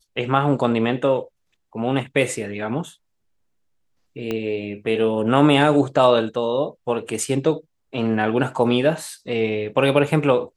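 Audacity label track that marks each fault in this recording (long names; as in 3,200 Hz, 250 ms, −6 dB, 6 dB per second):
4.310000	4.310000	click −13 dBFS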